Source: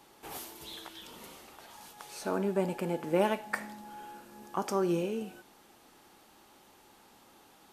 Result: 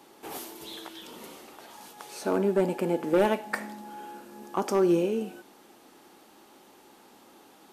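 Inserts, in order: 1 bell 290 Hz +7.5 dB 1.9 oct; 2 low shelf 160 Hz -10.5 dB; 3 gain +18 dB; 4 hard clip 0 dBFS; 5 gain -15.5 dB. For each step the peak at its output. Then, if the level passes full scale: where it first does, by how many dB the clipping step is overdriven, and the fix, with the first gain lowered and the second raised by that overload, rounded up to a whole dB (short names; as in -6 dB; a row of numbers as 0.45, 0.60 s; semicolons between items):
-9.5, -11.5, +6.5, 0.0, -15.5 dBFS; step 3, 6.5 dB; step 3 +11 dB, step 5 -8.5 dB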